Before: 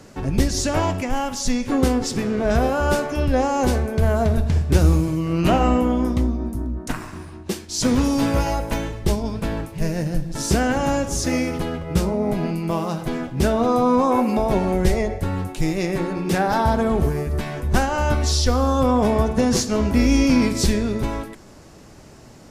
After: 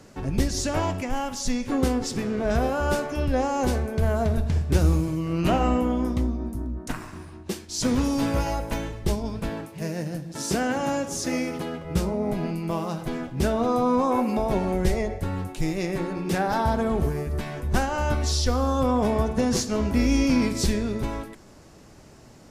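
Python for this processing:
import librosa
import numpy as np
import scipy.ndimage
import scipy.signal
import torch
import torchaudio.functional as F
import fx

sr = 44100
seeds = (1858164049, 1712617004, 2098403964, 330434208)

y = fx.highpass(x, sr, hz=150.0, slope=12, at=(9.49, 11.85))
y = y * 10.0 ** (-4.5 / 20.0)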